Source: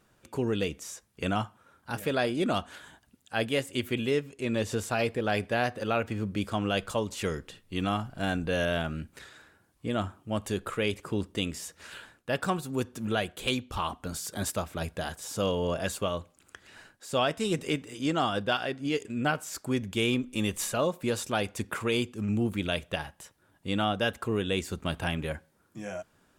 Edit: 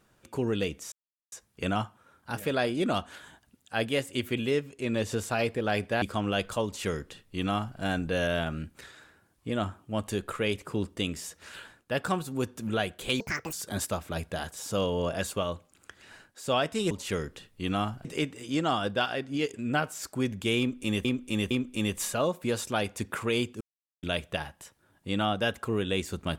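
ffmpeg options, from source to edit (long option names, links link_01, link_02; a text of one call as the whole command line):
ffmpeg -i in.wav -filter_complex "[0:a]asplit=11[link_01][link_02][link_03][link_04][link_05][link_06][link_07][link_08][link_09][link_10][link_11];[link_01]atrim=end=0.92,asetpts=PTS-STARTPTS,afade=type=out:start_time=0.916:duration=0.004:curve=hsin,apad=pad_dur=0.4[link_12];[link_02]atrim=start=0.92:end=5.622,asetpts=PTS-STARTPTS,afade=type=in:duration=0.004:curve=hsin[link_13];[link_03]atrim=start=6.398:end=13.584[link_14];[link_04]atrim=start=13.58:end=14.18,asetpts=PTS-STARTPTS,asetrate=80703,aresample=44100,atrim=end_sample=14459,asetpts=PTS-STARTPTS[link_15];[link_05]atrim=start=14.176:end=17.562[link_16];[link_06]atrim=start=7.028:end=8.172[link_17];[link_07]atrim=start=17.558:end=20.562[link_18];[link_08]atrim=start=20.098:end=20.562[link_19];[link_09]atrim=start=20.098:end=22.2,asetpts=PTS-STARTPTS,afade=type=out:start_time=2.098:duration=0.004:curve=hsin[link_20];[link_10]atrim=start=22.2:end=22.62,asetpts=PTS-STARTPTS,volume=0[link_21];[link_11]atrim=start=22.62,asetpts=PTS-STARTPTS,afade=type=in:duration=0.004:curve=hsin[link_22];[link_12][link_13]concat=n=2:v=0:a=1[link_23];[link_23][link_14]acrossfade=duration=0.004:curve1=hsin:curve2=hsin[link_24];[link_24][link_15]acrossfade=duration=0.004:curve1=hsin:curve2=hsin[link_25];[link_25][link_16]acrossfade=duration=0.004:curve1=hsin:curve2=hsin[link_26];[link_26][link_17]acrossfade=duration=0.004:curve1=hsin:curve2=hsin[link_27];[link_27][link_18]acrossfade=duration=0.004:curve1=hsin:curve2=hsin[link_28];[link_28][link_19]acrossfade=duration=0.004:curve1=hsin:curve2=hsin[link_29];[link_20][link_21][link_22]concat=n=3:v=0:a=1[link_30];[link_29][link_30]acrossfade=duration=0.004:curve1=hsin:curve2=hsin" out.wav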